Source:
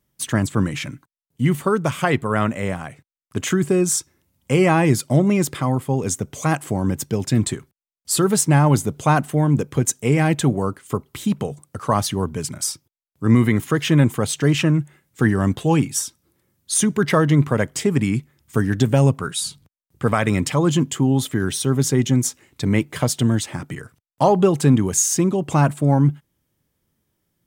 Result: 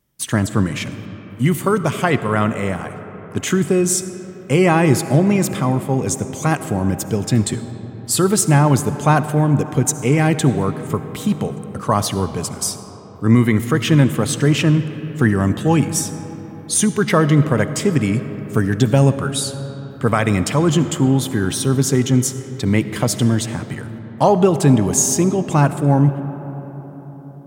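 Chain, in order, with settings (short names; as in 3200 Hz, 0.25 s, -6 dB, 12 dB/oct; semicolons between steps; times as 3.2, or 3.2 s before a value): 0.91–1.82 high shelf 5100 Hz +6.5 dB; reverb RT60 4.7 s, pre-delay 30 ms, DRR 11 dB; gain +2 dB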